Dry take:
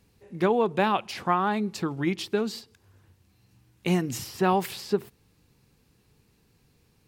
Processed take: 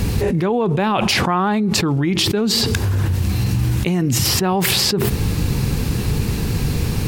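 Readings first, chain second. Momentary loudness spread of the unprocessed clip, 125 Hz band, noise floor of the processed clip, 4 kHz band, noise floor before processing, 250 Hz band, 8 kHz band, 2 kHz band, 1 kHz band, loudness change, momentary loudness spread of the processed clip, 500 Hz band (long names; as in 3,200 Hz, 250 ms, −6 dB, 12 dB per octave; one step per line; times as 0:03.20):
9 LU, +18.0 dB, −22 dBFS, +18.5 dB, −65 dBFS, +10.5 dB, +19.0 dB, +10.0 dB, +5.0 dB, +9.0 dB, 5 LU, +6.0 dB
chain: low-shelf EQ 200 Hz +9.5 dB
envelope flattener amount 100%
level −1.5 dB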